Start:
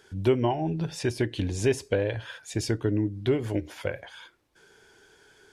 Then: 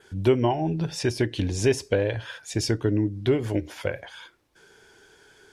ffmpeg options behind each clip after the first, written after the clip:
ffmpeg -i in.wav -af "adynamicequalizer=threshold=0.00178:dfrequency=5500:dqfactor=4:tfrequency=5500:tqfactor=4:attack=5:release=100:ratio=0.375:range=2.5:mode=boostabove:tftype=bell,volume=2.5dB" out.wav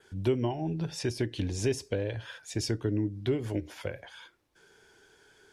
ffmpeg -i in.wav -filter_complex "[0:a]acrossover=split=420|3000[link_01][link_02][link_03];[link_02]acompressor=threshold=-34dB:ratio=2[link_04];[link_01][link_04][link_03]amix=inputs=3:normalize=0,volume=-5.5dB" out.wav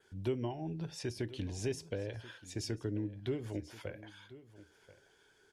ffmpeg -i in.wav -af "aecho=1:1:1034:0.133,volume=-7.5dB" out.wav

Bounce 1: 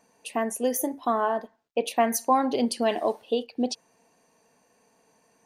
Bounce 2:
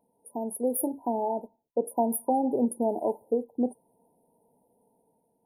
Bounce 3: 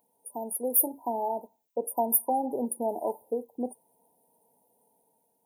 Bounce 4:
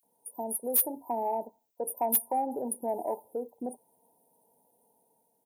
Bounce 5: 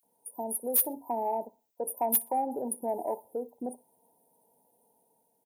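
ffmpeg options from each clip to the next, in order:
ffmpeg -i in.wav -af "afftfilt=real='re*(1-between(b*sr/4096,1000,9300))':imag='im*(1-between(b*sr/4096,1000,9300))':win_size=4096:overlap=0.75,equalizer=frequency=710:width=2.8:gain=-4.5,dynaudnorm=framelen=110:gausssize=11:maxgain=5dB,volume=-5dB" out.wav
ffmpeg -i in.wav -af "tiltshelf=frequency=820:gain=-8,aexciter=amount=1.6:drive=2.5:freq=6400" out.wav
ffmpeg -i in.wav -filter_complex "[0:a]acrossover=split=580[link_01][link_02];[link_01]alimiter=level_in=6.5dB:limit=-24dB:level=0:latency=1:release=72,volume=-6.5dB[link_03];[link_03][link_02]amix=inputs=2:normalize=0,acrossover=split=2300[link_04][link_05];[link_04]adelay=30[link_06];[link_06][link_05]amix=inputs=2:normalize=0,asoftclip=type=tanh:threshold=-15dB" out.wav
ffmpeg -i in.wav -af "aecho=1:1:61|122:0.0631|0.0196" out.wav

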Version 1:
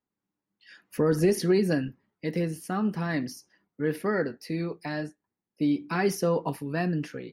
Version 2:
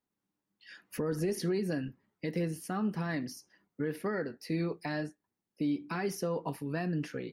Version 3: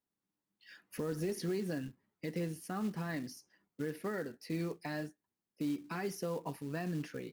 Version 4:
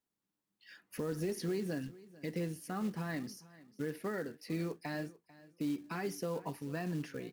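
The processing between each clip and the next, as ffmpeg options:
ffmpeg -i in.wav -af "alimiter=limit=-23.5dB:level=0:latency=1:release=430" out.wav
ffmpeg -i in.wav -af "acrusher=bits=5:mode=log:mix=0:aa=0.000001,volume=-4.5dB" out.wav
ffmpeg -i in.wav -af "aecho=1:1:443|886:0.1|0.015" out.wav

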